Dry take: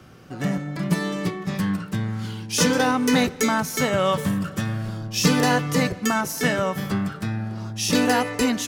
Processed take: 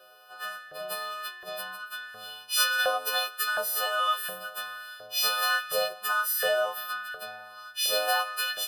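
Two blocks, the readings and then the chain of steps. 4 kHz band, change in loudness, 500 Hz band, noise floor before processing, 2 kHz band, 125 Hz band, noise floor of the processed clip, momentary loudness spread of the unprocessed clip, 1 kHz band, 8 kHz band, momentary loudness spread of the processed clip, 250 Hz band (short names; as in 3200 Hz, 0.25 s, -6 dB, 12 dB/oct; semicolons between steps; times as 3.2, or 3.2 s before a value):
0.0 dB, -5.0 dB, -7.0 dB, -38 dBFS, -1.5 dB, under -35 dB, -48 dBFS, 9 LU, -4.0 dB, -5.5 dB, 14 LU, under -35 dB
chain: frequency quantiser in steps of 3 st; LFO high-pass saw up 1.4 Hz 520–1800 Hz; fixed phaser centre 1400 Hz, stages 8; gain -6 dB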